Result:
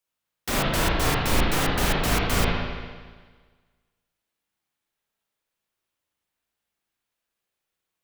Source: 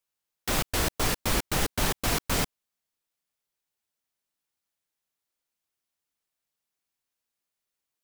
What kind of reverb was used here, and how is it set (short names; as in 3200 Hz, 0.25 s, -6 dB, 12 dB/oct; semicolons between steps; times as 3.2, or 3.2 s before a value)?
spring tank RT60 1.5 s, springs 36/57 ms, chirp 30 ms, DRR -4.5 dB